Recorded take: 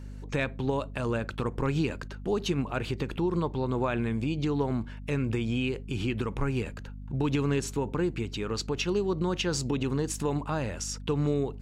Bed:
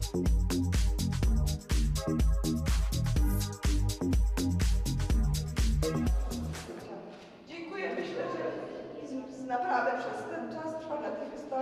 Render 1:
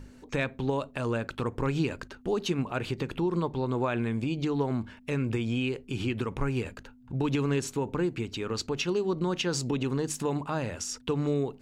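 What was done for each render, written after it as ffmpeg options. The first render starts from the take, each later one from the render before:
-af "bandreject=f=50:t=h:w=6,bandreject=f=100:t=h:w=6,bandreject=f=150:t=h:w=6,bandreject=f=200:t=h:w=6"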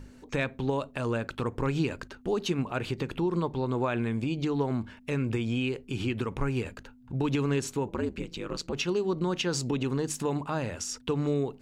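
-filter_complex "[0:a]asettb=1/sr,asplit=3[a][b][c];[a]atrim=end=7.884[d];[b]atrim=start=7.88:end=8.73,asetpts=PTS-STARTPTS,afade=t=in:d=0.004:c=qsin,afade=t=out:st=0.846:d=0.004:c=qsin,aeval=exprs='val(0)*sin(2*PI*76*n/s)':c=same[e];[c]atrim=start=8.726[f];[d][e]acrossfade=d=0.004:c1=hsin:c2=qsin[g];[g][f]acrossfade=d=0.004:c1=qsin:c2=hsin"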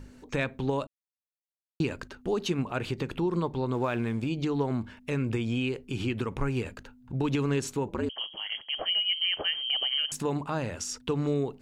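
-filter_complex "[0:a]asettb=1/sr,asplit=3[a][b][c];[a]atrim=end=3.734[d];[b]atrim=start=3.73:end=4.29,asetpts=PTS-STARTPTS,afade=t=in:d=0.004:c=qsin,afade=t=out:st=0.556:d=0.004:c=qsin,aeval=exprs='sgn(val(0))*max(abs(val(0))-0.00211,0)':c=same[e];[c]atrim=start=4.286[f];[d][e]acrossfade=d=0.004:c1=hsin:c2=qsin[g];[g][f]acrossfade=d=0.004:c1=qsin:c2=hsin,asettb=1/sr,asplit=3[h][i][j];[h]atrim=end=8.094[k];[i]atrim=start=8.09:end=10.12,asetpts=PTS-STARTPTS,afade=t=in:d=0.004:c=qsin,afade=t=out:st=2.026:d=0.004:c=qsin,lowpass=f=2.8k:t=q:w=0.5098,lowpass=f=2.8k:t=q:w=0.6013,lowpass=f=2.8k:t=q:w=0.9,lowpass=f=2.8k:t=q:w=2.563,afreqshift=-3300[l];[j]atrim=start=10.116[m];[k][l]acrossfade=d=0.004:c1=hsin:c2=qsin[n];[n][m]acrossfade=d=0.004:c1=qsin:c2=hsin,asplit=3[o][p][q];[o]atrim=end=0.87,asetpts=PTS-STARTPTS,afade=t=out:st=0.866:d=0.004:c=hsin[r];[p]atrim=start=0.87:end=1.8,asetpts=PTS-STARTPTS,volume=0[s];[q]atrim=start=1.8,asetpts=PTS-STARTPTS,afade=t=in:d=0.004:c=hsin[t];[r][s][t]concat=n=3:v=0:a=1"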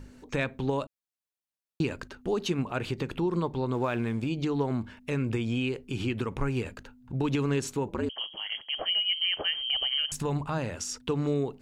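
-filter_complex "[0:a]asplit=3[a][b][c];[a]afade=t=out:st=9.58:d=0.02[d];[b]asubboost=boost=4:cutoff=120,afade=t=in:st=9.58:d=0.02,afade=t=out:st=10.57:d=0.02[e];[c]afade=t=in:st=10.57:d=0.02[f];[d][e][f]amix=inputs=3:normalize=0"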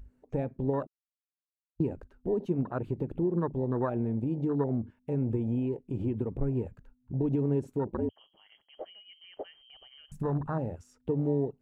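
-af "equalizer=f=4.8k:w=0.57:g=-13.5,afwtdn=0.0251"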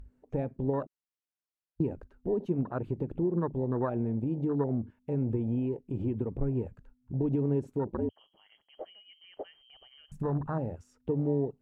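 -af "lowpass=f=2.1k:p=1,aemphasis=mode=production:type=cd"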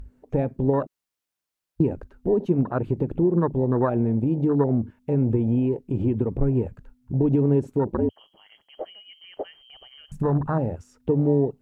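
-af "volume=8.5dB"

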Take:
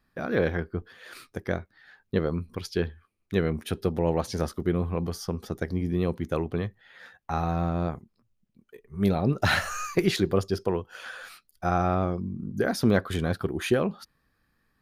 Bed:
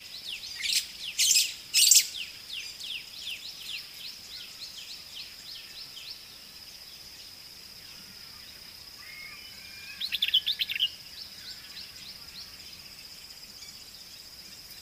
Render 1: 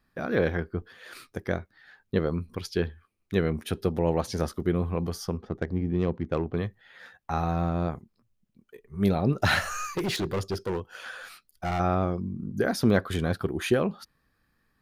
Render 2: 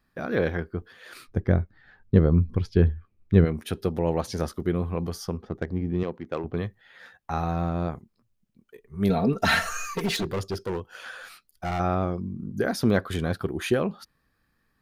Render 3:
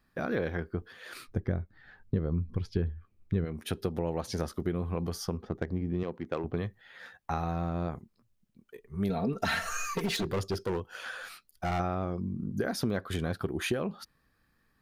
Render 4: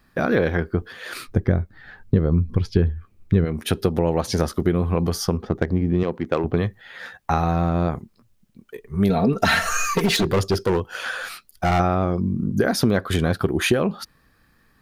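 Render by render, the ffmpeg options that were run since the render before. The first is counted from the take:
-filter_complex "[0:a]asettb=1/sr,asplit=3[a][b][c];[a]atrim=end=5.374[d];[b]atrim=start=5.37:end=6.57,asetpts=PTS-STARTPTS,afade=t=in:d=0.004:c=qsin,afade=t=out:st=1.196:d=0.004:c=qsin,adynamicsmooth=sensitivity=2.5:basefreq=1.6k[e];[c]atrim=start=6.566[f];[d][e]acrossfade=d=0.004:c1=hsin:c2=qsin[g];[g][f]acrossfade=d=0.004:c1=qsin:c2=hsin,asettb=1/sr,asplit=3[h][i][j];[h]atrim=end=9.824[k];[i]atrim=start=9.82:end=11.8,asetpts=PTS-STARTPTS,afade=t=in:d=0.004:c=qsin,afade=t=out:st=1.976:d=0.004:c=qsin,asoftclip=type=hard:threshold=-25dB[l];[j]atrim=start=11.796[m];[k][l]acrossfade=d=0.004:c1=hsin:c2=qsin[n];[n][m]acrossfade=d=0.004:c1=qsin:c2=hsin"
-filter_complex "[0:a]asplit=3[a][b][c];[a]afade=t=out:st=1.27:d=0.02[d];[b]aemphasis=mode=reproduction:type=riaa,afade=t=in:st=1.27:d=0.02,afade=t=out:st=3.44:d=0.02[e];[c]afade=t=in:st=3.44:d=0.02[f];[d][e][f]amix=inputs=3:normalize=0,asettb=1/sr,asplit=3[g][h][i];[g]atrim=end=6.034[j];[h]atrim=start=6.03:end=6.44,asetpts=PTS-STARTPTS,afade=t=in:d=0.004:c=qsin,afade=t=out:st=0.406:d=0.004:c=qsin,highpass=f=380:p=1[k];[i]atrim=start=6.436[l];[j][k]acrossfade=d=0.004:c1=hsin:c2=qsin[m];[m][l]acrossfade=d=0.004:c1=qsin:c2=hsin,asettb=1/sr,asplit=3[n][o][p];[n]atrim=end=9.094[q];[o]atrim=start=9.09:end=10.23,asetpts=PTS-STARTPTS,afade=t=in:d=0.004:c=qsin,afade=t=out:st=1.136:d=0.004:c=qsin,aecho=1:1:4.4:0.83,atrim=end_sample=50274[r];[p]atrim=start=10.226[s];[q][r]acrossfade=d=0.004:c1=hsin:c2=qsin[t];[t][s]acrossfade=d=0.004:c1=qsin:c2=hsin"
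-af "acompressor=threshold=-28dB:ratio=4"
-af "volume=11.5dB"

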